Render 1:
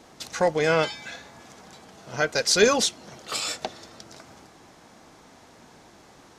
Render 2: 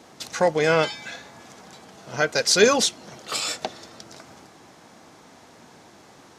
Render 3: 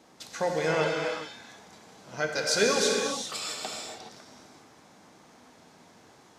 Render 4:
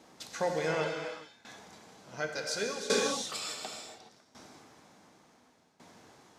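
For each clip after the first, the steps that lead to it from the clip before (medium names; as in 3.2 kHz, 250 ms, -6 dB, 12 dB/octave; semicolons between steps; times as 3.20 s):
high-pass 84 Hz; trim +2 dB
gated-style reverb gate 450 ms flat, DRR -0.5 dB; trim -9 dB
tremolo saw down 0.69 Hz, depth 85%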